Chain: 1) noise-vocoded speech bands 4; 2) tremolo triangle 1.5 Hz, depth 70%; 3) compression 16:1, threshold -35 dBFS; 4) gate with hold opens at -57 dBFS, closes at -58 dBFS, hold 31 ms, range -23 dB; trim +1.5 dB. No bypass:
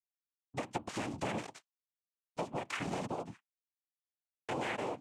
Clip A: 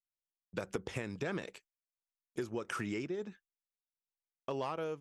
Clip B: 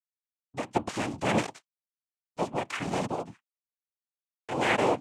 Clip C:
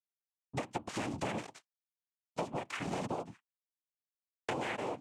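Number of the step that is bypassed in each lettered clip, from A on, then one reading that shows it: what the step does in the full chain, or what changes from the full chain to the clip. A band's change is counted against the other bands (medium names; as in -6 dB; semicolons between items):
1, momentary loudness spread change -2 LU; 3, mean gain reduction 7.0 dB; 2, momentary loudness spread change -5 LU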